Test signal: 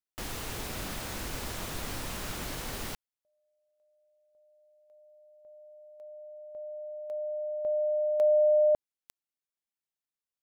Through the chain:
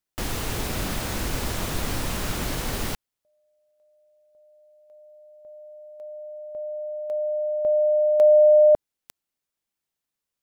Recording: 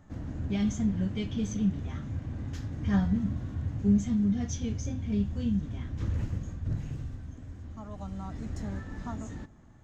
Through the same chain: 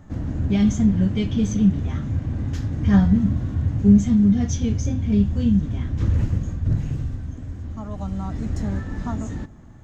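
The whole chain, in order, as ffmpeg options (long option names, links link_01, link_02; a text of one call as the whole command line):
ffmpeg -i in.wav -af "lowshelf=frequency=420:gain=4,volume=7dB" out.wav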